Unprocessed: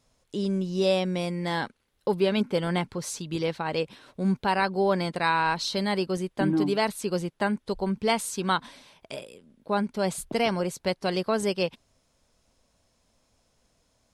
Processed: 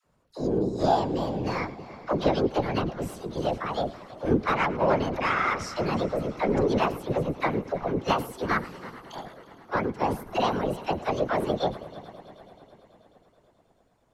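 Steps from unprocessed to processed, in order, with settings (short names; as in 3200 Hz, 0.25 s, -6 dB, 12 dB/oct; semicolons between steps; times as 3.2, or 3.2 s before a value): formant shift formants +5 st; high shelf 2700 Hz -9 dB; added harmonics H 6 -27 dB, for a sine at -11.5 dBFS; high shelf 6200 Hz -7.5 dB; dispersion lows, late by 58 ms, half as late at 580 Hz; on a send: multi-head echo 0.108 s, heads first and third, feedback 69%, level -19 dB; on the sum: whisperiser; gain +1 dB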